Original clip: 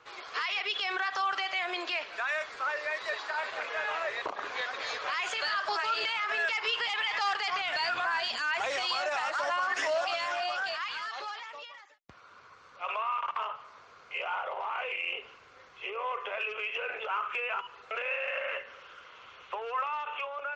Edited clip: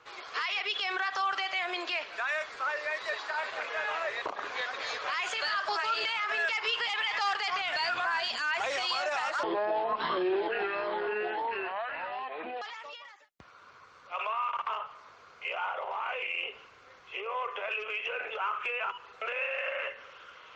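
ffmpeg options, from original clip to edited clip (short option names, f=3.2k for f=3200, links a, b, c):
-filter_complex "[0:a]asplit=3[a][b][c];[a]atrim=end=9.434[d];[b]atrim=start=9.43:end=11.31,asetpts=PTS-STARTPTS,asetrate=26019,aresample=44100,atrim=end_sample=140522,asetpts=PTS-STARTPTS[e];[c]atrim=start=11.306[f];[d][e]acrossfade=d=0.004:c1=hsin:c2=hsin[g];[g][f]acrossfade=d=0.004:c1=hsin:c2=hsin"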